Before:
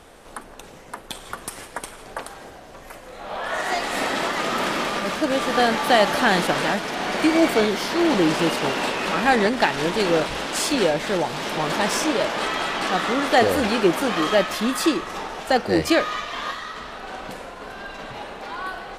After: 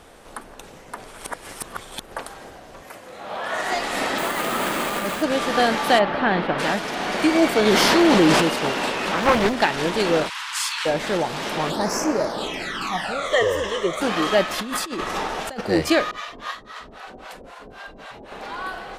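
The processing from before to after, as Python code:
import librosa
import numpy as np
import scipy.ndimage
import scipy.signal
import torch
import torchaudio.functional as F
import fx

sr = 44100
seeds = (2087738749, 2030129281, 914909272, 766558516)

y = fx.highpass(x, sr, hz=94.0, slope=12, at=(2.81, 3.62))
y = fx.resample_bad(y, sr, factor=4, down='filtered', up='hold', at=(4.18, 5.23))
y = fx.air_absorb(y, sr, metres=370.0, at=(5.98, 6.58), fade=0.02)
y = fx.env_flatten(y, sr, amount_pct=70, at=(7.65, 8.4), fade=0.02)
y = fx.doppler_dist(y, sr, depth_ms=0.8, at=(9.12, 9.53))
y = fx.ellip_highpass(y, sr, hz=960.0, order=4, stop_db=40, at=(10.28, 10.85), fade=0.02)
y = fx.phaser_stages(y, sr, stages=12, low_hz=240.0, high_hz=3500.0, hz=fx.line((11.69, 0.52), (14.0, 0.19)), feedback_pct=25, at=(11.69, 14.0), fade=0.02)
y = fx.over_compress(y, sr, threshold_db=-28.0, ratio=-1.0, at=(14.58, 15.61))
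y = fx.harmonic_tremolo(y, sr, hz=3.8, depth_pct=100, crossover_hz=560.0, at=(16.11, 18.32))
y = fx.edit(y, sr, fx.reverse_span(start_s=0.98, length_s=1.14), tone=tone)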